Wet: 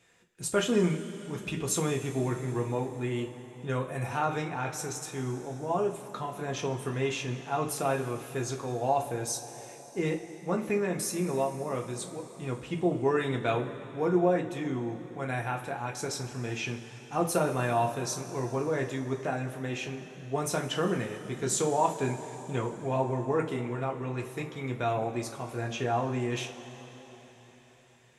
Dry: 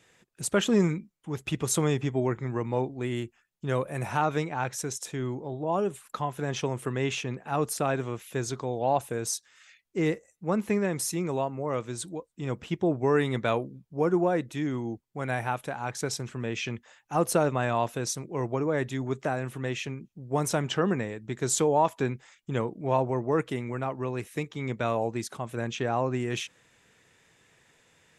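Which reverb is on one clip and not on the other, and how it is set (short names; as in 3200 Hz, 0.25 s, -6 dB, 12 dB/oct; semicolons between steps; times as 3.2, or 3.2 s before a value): two-slope reverb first 0.25 s, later 4.4 s, from -19 dB, DRR 0 dB; gain -4.5 dB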